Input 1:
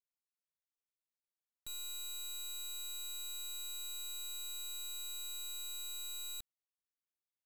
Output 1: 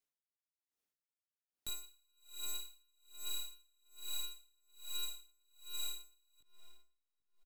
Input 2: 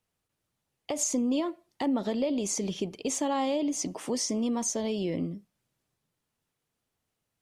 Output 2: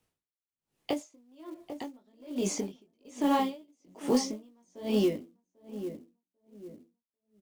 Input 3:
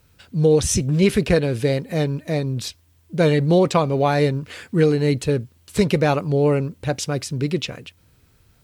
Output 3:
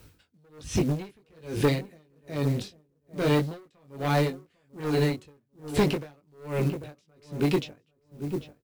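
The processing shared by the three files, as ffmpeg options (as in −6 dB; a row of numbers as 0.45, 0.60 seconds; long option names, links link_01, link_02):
-filter_complex "[0:a]equalizer=frequency=310:width_type=o:width=0.89:gain=5.5,flanger=delay=19:depth=2.3:speed=1.4,asoftclip=type=tanh:threshold=-17dB,asplit=2[link_01][link_02];[link_02]adelay=794,lowpass=frequency=1200:poles=1,volume=-13dB,asplit=2[link_03][link_04];[link_04]adelay=794,lowpass=frequency=1200:poles=1,volume=0.35,asplit=2[link_05][link_06];[link_06]adelay=794,lowpass=frequency=1200:poles=1,volume=0.35[link_07];[link_01][link_03][link_05][link_07]amix=inputs=4:normalize=0,acrossover=split=410|1200|4300[link_08][link_09][link_10][link_11];[link_08]acompressor=threshold=-31dB:ratio=4[link_12];[link_09]acompressor=threshold=-34dB:ratio=4[link_13];[link_10]acompressor=threshold=-39dB:ratio=4[link_14];[link_11]acompressor=threshold=-49dB:ratio=4[link_15];[link_12][link_13][link_14][link_15]amix=inputs=4:normalize=0,acrusher=bits=6:mode=log:mix=0:aa=0.000001,aeval=exprs='val(0)*pow(10,-40*(0.5-0.5*cos(2*PI*1.2*n/s))/20)':channel_layout=same,volume=8dB"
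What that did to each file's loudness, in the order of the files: −2.5, −2.0, −8.5 LU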